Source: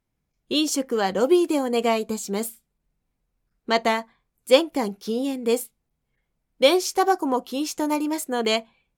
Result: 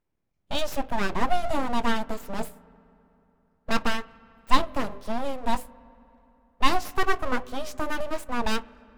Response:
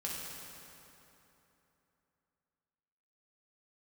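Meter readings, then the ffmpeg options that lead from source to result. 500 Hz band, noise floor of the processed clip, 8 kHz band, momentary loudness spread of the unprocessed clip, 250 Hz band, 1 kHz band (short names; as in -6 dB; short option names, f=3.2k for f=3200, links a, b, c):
-10.5 dB, -74 dBFS, -10.5 dB, 9 LU, -7.5 dB, -1.0 dB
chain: -filter_complex "[0:a]highshelf=f=3.2k:g=-11.5,bandreject=f=50:t=h:w=6,bandreject=f=100:t=h:w=6,bandreject=f=150:t=h:w=6,bandreject=f=200:t=h:w=6,bandreject=f=250:t=h:w=6,bandreject=f=300:t=h:w=6,bandreject=f=350:t=h:w=6,bandreject=f=400:t=h:w=6,aeval=exprs='abs(val(0))':c=same,asplit=2[a][b];[1:a]atrim=start_sample=2205,lowpass=2.8k,lowshelf=f=250:g=9[c];[b][c]afir=irnorm=-1:irlink=0,volume=-21.5dB[d];[a][d]amix=inputs=2:normalize=0"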